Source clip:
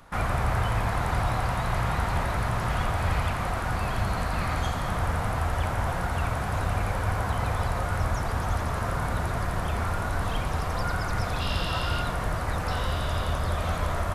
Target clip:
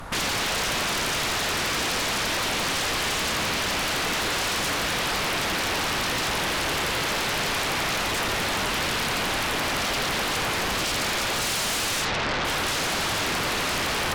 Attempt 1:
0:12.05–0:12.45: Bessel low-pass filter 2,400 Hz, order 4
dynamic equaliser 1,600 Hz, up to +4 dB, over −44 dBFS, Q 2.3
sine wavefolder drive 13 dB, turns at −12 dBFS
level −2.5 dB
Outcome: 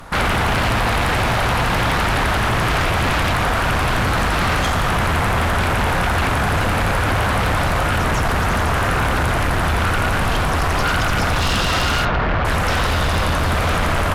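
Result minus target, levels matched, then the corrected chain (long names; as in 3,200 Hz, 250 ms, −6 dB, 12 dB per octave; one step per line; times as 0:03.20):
sine wavefolder: distortion −39 dB
0:12.05–0:12.45: Bessel low-pass filter 2,400 Hz, order 4
dynamic equaliser 1,600 Hz, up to +4 dB, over −44 dBFS, Q 2.3
sine wavefolder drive 13 dB, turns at −20.5 dBFS
level −2.5 dB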